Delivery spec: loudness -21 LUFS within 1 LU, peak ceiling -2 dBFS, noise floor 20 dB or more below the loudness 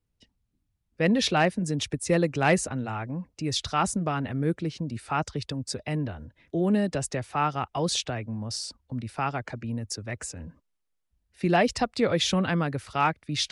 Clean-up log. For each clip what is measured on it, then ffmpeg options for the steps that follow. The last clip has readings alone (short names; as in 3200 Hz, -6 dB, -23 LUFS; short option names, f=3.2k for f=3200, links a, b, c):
loudness -27.5 LUFS; peak -12.5 dBFS; loudness target -21.0 LUFS
-> -af "volume=6.5dB"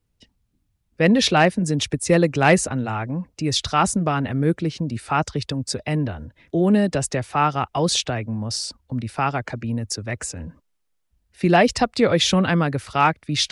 loudness -21.0 LUFS; peak -6.0 dBFS; noise floor -71 dBFS